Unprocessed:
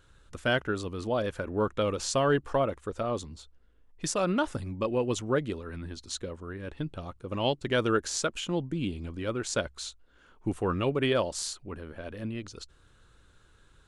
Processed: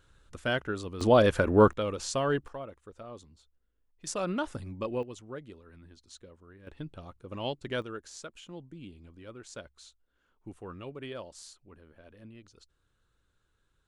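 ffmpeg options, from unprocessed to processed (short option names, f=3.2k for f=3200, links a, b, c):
-af "asetnsamples=n=441:p=0,asendcmd='1.01 volume volume 8.5dB;1.73 volume volume -3.5dB;2.48 volume volume -14dB;4.07 volume volume -4.5dB;5.03 volume volume -14.5dB;6.67 volume volume -6.5dB;7.82 volume volume -14.5dB',volume=-3dB"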